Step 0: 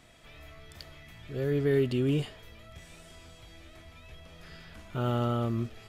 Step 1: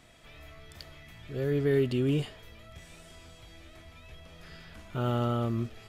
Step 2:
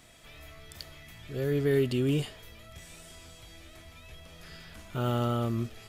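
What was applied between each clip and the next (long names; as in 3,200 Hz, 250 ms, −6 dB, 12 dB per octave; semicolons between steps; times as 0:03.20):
no processing that can be heard
high-shelf EQ 5,300 Hz +9 dB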